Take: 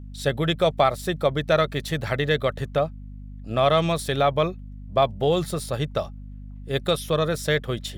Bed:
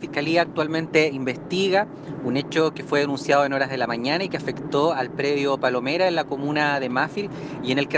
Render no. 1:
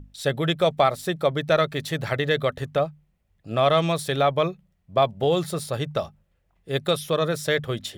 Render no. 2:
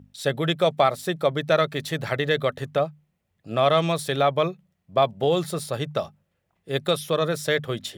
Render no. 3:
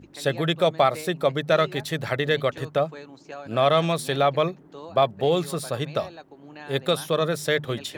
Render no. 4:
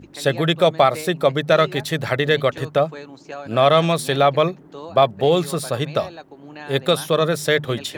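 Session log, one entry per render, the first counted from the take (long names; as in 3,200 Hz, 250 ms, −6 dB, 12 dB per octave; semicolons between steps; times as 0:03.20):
mains-hum notches 50/100/150/200/250 Hz
high-pass filter 110 Hz
mix in bed −20.5 dB
level +5 dB; brickwall limiter −3 dBFS, peak gain reduction 1 dB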